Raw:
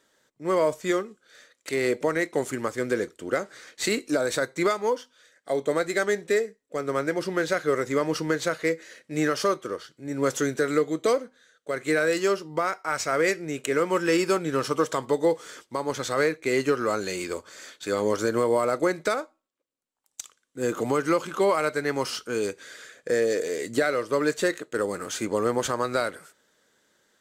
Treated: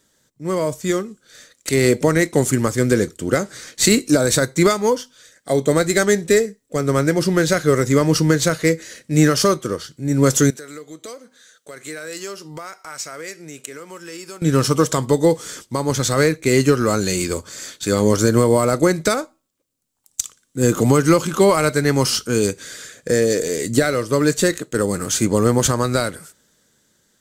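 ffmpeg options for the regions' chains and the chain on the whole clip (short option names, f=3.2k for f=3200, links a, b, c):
-filter_complex "[0:a]asettb=1/sr,asplit=3[a][b][c];[a]atrim=end=10.504[d];[b]atrim=start=10.5:end=14.42,asetpts=PTS-STARTPTS,afade=t=in:d=0.004:c=qsin,afade=t=out:st=3.916:d=0.004:c=qsin,highpass=f=610:p=1,acompressor=threshold=-54dB:ratio=2:attack=3.2:release=140:knee=1:detection=peak[e];[c]atrim=start=14.416[f];[d][e]acrossfade=d=0.004:c1=hsin:c2=qsin[g];[g][f]acrossfade=d=0.004:c1=qsin:c2=hsin,bass=f=250:g=15,treble=f=4k:g=10,dynaudnorm=f=150:g=17:m=11.5dB,volume=-1dB"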